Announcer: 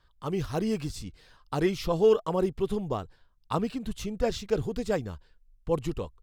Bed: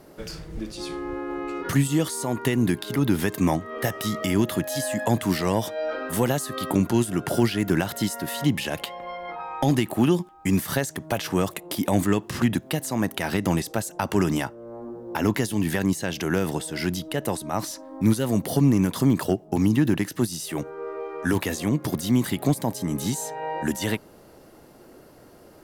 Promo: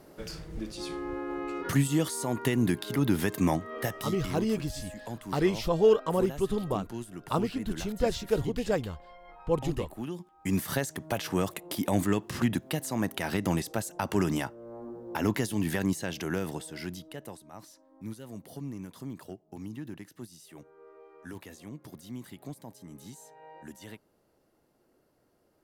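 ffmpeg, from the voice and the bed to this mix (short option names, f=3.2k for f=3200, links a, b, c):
-filter_complex "[0:a]adelay=3800,volume=0dB[a];[1:a]volume=8dB,afade=t=out:st=3.64:d=0.8:silence=0.223872,afade=t=in:st=10.15:d=0.47:silence=0.251189,afade=t=out:st=15.84:d=1.61:silence=0.177828[b];[a][b]amix=inputs=2:normalize=0"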